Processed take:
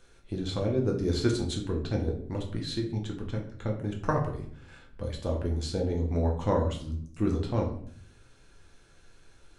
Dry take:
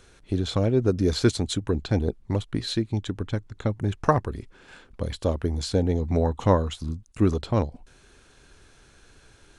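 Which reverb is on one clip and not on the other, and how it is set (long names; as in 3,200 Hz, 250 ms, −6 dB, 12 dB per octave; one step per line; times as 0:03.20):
rectangular room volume 75 cubic metres, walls mixed, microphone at 0.74 metres
level −8.5 dB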